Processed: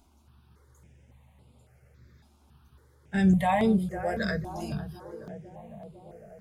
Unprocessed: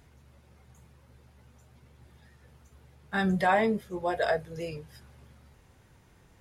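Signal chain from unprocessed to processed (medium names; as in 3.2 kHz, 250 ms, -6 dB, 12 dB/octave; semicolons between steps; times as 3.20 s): 3.14–4.93 s: tone controls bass +10 dB, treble +6 dB; on a send: tape echo 504 ms, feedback 73%, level -8.5 dB, low-pass 1.1 kHz; on the sum: stepped phaser 3.6 Hz 490–6000 Hz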